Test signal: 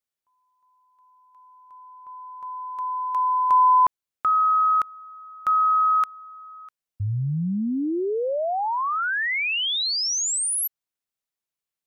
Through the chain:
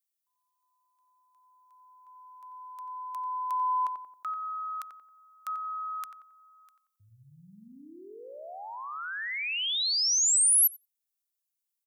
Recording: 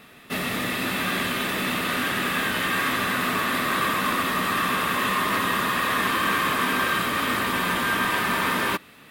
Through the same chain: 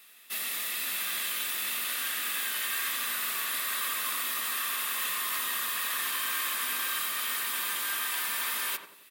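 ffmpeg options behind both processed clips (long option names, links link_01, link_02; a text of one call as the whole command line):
ffmpeg -i in.wav -filter_complex "[0:a]aderivative,asplit=2[link_01][link_02];[link_02]adelay=90,lowpass=frequency=1000:poles=1,volume=-4.5dB,asplit=2[link_03][link_04];[link_04]adelay=90,lowpass=frequency=1000:poles=1,volume=0.53,asplit=2[link_05][link_06];[link_06]adelay=90,lowpass=frequency=1000:poles=1,volume=0.53,asplit=2[link_07][link_08];[link_08]adelay=90,lowpass=frequency=1000:poles=1,volume=0.53,asplit=2[link_09][link_10];[link_10]adelay=90,lowpass=frequency=1000:poles=1,volume=0.53,asplit=2[link_11][link_12];[link_12]adelay=90,lowpass=frequency=1000:poles=1,volume=0.53,asplit=2[link_13][link_14];[link_14]adelay=90,lowpass=frequency=1000:poles=1,volume=0.53[link_15];[link_01][link_03][link_05][link_07][link_09][link_11][link_13][link_15]amix=inputs=8:normalize=0,acontrast=73,volume=-5.5dB" out.wav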